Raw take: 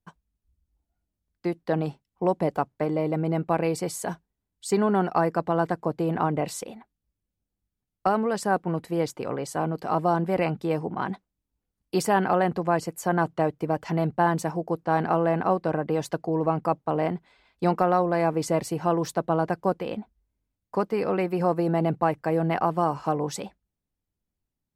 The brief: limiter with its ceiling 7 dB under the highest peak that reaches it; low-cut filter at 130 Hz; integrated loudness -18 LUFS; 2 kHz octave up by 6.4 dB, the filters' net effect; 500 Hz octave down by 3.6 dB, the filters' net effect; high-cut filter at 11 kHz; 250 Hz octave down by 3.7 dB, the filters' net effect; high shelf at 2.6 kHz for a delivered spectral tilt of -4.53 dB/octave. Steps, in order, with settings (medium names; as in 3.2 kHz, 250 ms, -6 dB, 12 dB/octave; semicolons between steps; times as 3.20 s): high-pass 130 Hz; low-pass 11 kHz; peaking EQ 250 Hz -3.5 dB; peaking EQ 500 Hz -4.5 dB; peaking EQ 2 kHz +6.5 dB; treble shelf 2.6 kHz +6 dB; trim +11.5 dB; peak limiter -3.5 dBFS